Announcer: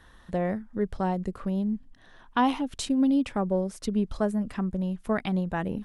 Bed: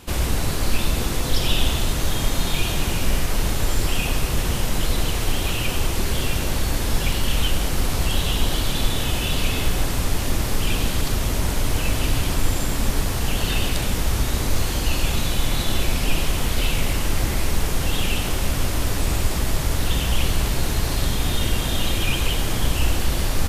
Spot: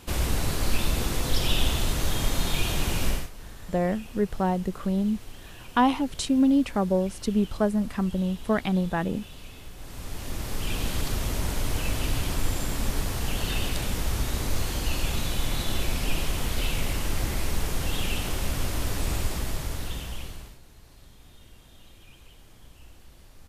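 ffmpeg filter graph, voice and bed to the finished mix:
-filter_complex "[0:a]adelay=3400,volume=1.33[s0];[1:a]volume=3.98,afade=t=out:st=3.07:d=0.23:silence=0.125893,afade=t=in:st=9.77:d=1.18:silence=0.158489,afade=t=out:st=19.16:d=1.43:silence=0.0630957[s1];[s0][s1]amix=inputs=2:normalize=0"

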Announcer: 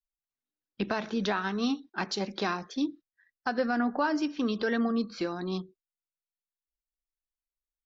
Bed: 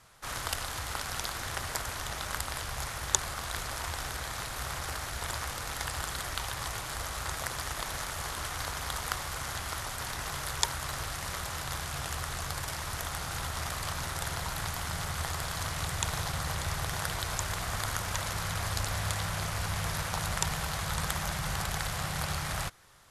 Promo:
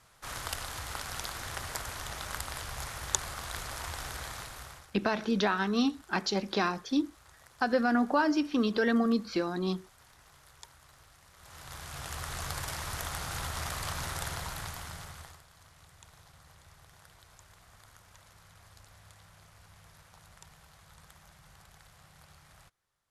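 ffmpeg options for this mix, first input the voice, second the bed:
-filter_complex "[0:a]adelay=4150,volume=1.19[s0];[1:a]volume=8.41,afade=t=out:st=4.25:d=0.65:silence=0.105925,afade=t=in:st=11.36:d=1.11:silence=0.0841395,afade=t=out:st=14.13:d=1.3:silence=0.0707946[s1];[s0][s1]amix=inputs=2:normalize=0"

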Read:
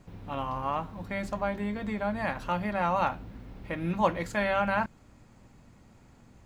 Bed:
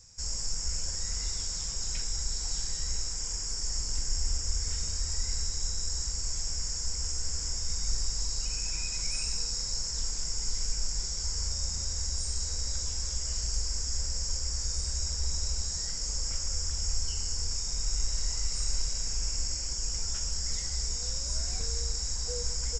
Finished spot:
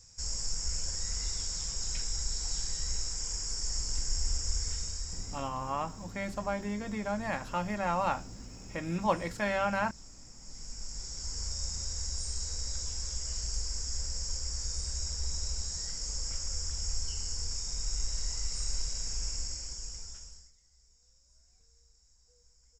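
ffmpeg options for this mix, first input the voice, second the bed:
-filter_complex "[0:a]adelay=5050,volume=0.708[s0];[1:a]volume=5.31,afade=t=out:st=4.59:d=0.92:silence=0.125893,afade=t=in:st=10.39:d=1.22:silence=0.158489,afade=t=out:st=19.26:d=1.26:silence=0.0334965[s1];[s0][s1]amix=inputs=2:normalize=0"

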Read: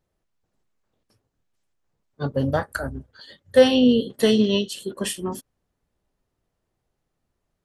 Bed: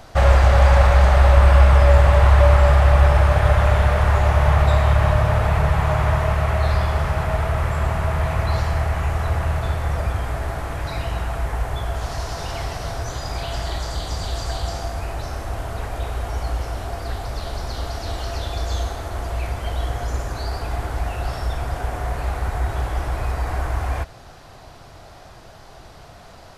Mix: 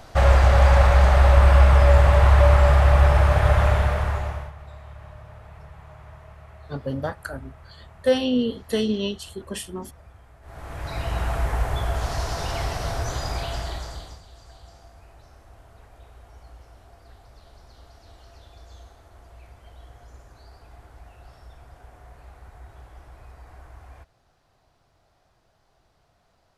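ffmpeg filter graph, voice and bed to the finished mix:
-filter_complex "[0:a]adelay=4500,volume=0.531[s0];[1:a]volume=15.8,afade=t=out:st=3.64:d=0.88:silence=0.0630957,afade=t=in:st=10.42:d=0.86:silence=0.0501187,afade=t=out:st=13.21:d=1.01:silence=0.0794328[s1];[s0][s1]amix=inputs=2:normalize=0"

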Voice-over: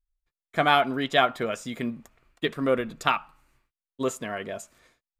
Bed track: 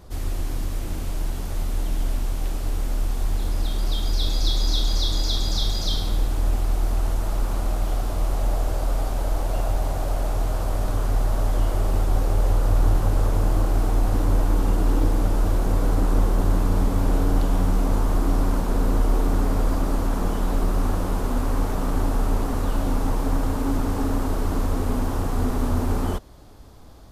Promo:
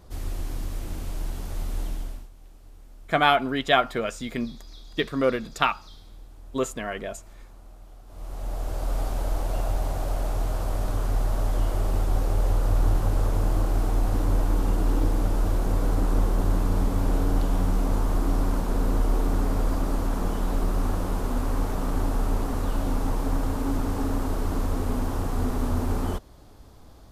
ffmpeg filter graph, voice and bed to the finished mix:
-filter_complex "[0:a]adelay=2550,volume=1.12[s0];[1:a]volume=6.31,afade=t=out:st=1.83:d=0.46:silence=0.112202,afade=t=in:st=8.06:d=0.95:silence=0.0944061[s1];[s0][s1]amix=inputs=2:normalize=0"

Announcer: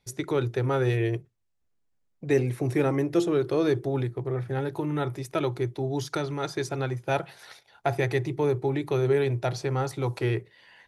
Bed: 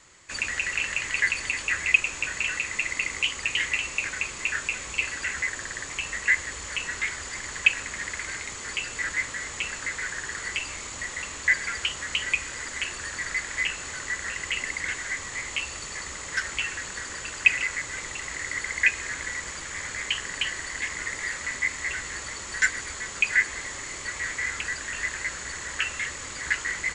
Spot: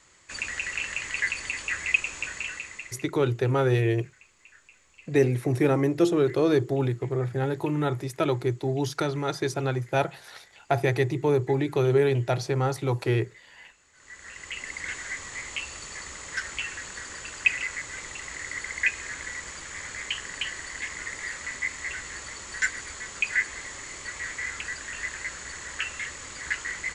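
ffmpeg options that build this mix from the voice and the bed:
-filter_complex "[0:a]adelay=2850,volume=1.26[s0];[1:a]volume=8.91,afade=t=out:st=2.22:d=0.87:silence=0.0749894,afade=t=in:st=13.93:d=1:silence=0.0749894[s1];[s0][s1]amix=inputs=2:normalize=0"

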